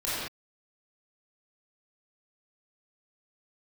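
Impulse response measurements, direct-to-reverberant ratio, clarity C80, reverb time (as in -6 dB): -11.5 dB, -1.0 dB, not exponential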